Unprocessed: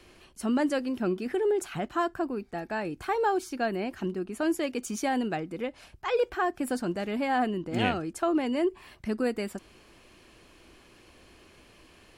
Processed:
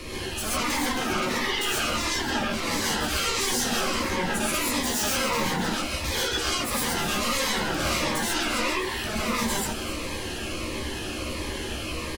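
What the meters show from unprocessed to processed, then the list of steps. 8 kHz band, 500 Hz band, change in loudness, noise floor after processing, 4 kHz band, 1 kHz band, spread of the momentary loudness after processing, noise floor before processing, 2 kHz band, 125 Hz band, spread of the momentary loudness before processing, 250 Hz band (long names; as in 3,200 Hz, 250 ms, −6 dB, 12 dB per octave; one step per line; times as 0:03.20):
+17.0 dB, −1.5 dB, +4.0 dB, −33 dBFS, +16.5 dB, +3.0 dB, 7 LU, −57 dBFS, +9.0 dB, +6.5 dB, 8 LU, −0.5 dB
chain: in parallel at −0.5 dB: downward compressor, threshold −39 dBFS, peak gain reduction 16.5 dB
on the sum: brickwall limiter −22 dBFS, peak gain reduction 11 dB
sine wavefolder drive 15 dB, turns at −22 dBFS
double-tracking delay 13 ms −5.5 dB
on a send: echo with shifted repeats 264 ms, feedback 55%, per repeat +34 Hz, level −13 dB
on the sum: reverb whose tail is shaped and stops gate 160 ms rising, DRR −5.5 dB
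phaser whose notches keep moving one way falling 1.5 Hz
level −7 dB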